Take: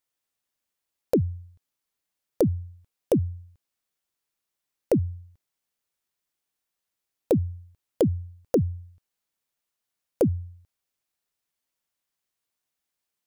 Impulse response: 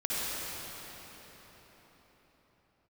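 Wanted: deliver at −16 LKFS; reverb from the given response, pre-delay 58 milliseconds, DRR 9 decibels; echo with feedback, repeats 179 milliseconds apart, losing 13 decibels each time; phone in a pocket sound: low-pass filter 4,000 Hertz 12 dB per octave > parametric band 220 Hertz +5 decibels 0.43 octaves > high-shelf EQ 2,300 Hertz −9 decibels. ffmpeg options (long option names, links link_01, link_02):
-filter_complex "[0:a]aecho=1:1:179|358|537:0.224|0.0493|0.0108,asplit=2[link_01][link_02];[1:a]atrim=start_sample=2205,adelay=58[link_03];[link_02][link_03]afir=irnorm=-1:irlink=0,volume=-18dB[link_04];[link_01][link_04]amix=inputs=2:normalize=0,lowpass=4000,equalizer=frequency=220:width_type=o:width=0.43:gain=5,highshelf=frequency=2300:gain=-9,volume=12dB"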